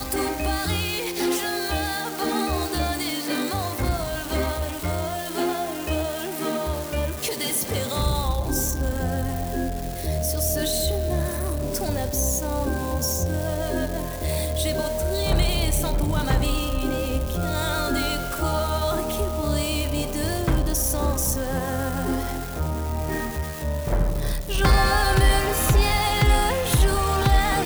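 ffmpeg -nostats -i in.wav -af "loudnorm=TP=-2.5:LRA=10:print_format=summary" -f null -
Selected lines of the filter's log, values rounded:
Input Integrated:    -23.8 LUFS
Input True Peak:      -8.9 dBTP
Input LRA:             5.9 LU
Input Threshold:     -33.8 LUFS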